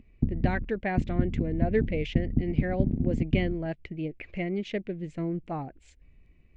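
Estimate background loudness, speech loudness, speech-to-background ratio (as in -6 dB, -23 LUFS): -30.5 LUFS, -32.5 LUFS, -2.0 dB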